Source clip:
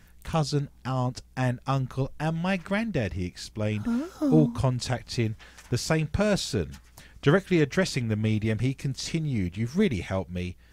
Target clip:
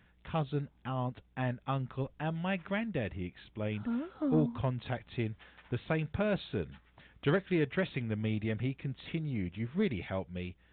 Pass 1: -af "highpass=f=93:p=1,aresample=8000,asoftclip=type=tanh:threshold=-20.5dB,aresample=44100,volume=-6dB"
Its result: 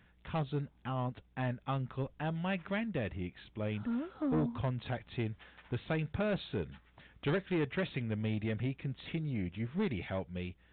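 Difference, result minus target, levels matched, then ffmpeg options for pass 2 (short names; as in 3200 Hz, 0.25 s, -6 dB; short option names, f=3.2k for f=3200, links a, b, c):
soft clip: distortion +10 dB
-af "highpass=f=93:p=1,aresample=8000,asoftclip=type=tanh:threshold=-12.5dB,aresample=44100,volume=-6dB"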